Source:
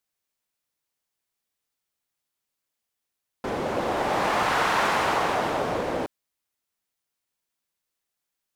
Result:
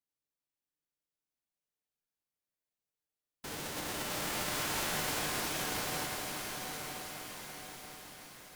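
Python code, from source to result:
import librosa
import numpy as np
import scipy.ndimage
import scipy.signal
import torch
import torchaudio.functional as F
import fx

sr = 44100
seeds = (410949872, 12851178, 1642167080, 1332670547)

p1 = fx.envelope_flatten(x, sr, power=0.3)
p2 = fx.sample_hold(p1, sr, seeds[0], rate_hz=1400.0, jitter_pct=0)
p3 = p1 + (p2 * 10.0 ** (-10.5 / 20.0))
p4 = fx.comb_fb(p3, sr, f0_hz=150.0, decay_s=1.7, harmonics='all', damping=0.0, mix_pct=80)
p5 = p4 + fx.echo_diffused(p4, sr, ms=906, feedback_pct=51, wet_db=-6.0, dry=0)
p6 = fx.echo_crushed(p5, sr, ms=343, feedback_pct=80, bits=9, wet_db=-8.5)
y = p6 * 10.0 ** (-1.0 / 20.0)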